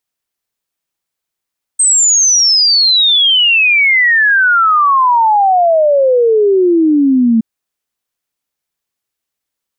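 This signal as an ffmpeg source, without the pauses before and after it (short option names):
-f lavfi -i "aevalsrc='0.473*clip(min(t,5.62-t)/0.01,0,1)*sin(2*PI*8400*5.62/log(220/8400)*(exp(log(220/8400)*t/5.62)-1))':d=5.62:s=44100"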